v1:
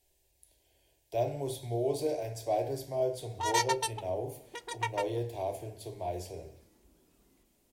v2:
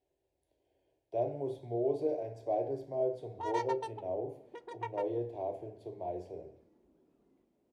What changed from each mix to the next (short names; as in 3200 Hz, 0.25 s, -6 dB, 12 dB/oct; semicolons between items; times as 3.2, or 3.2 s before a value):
master: add band-pass 370 Hz, Q 0.74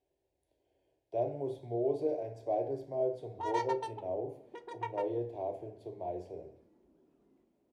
background: send +8.0 dB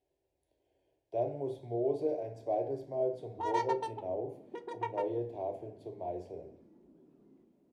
background: add low shelf 380 Hz +11.5 dB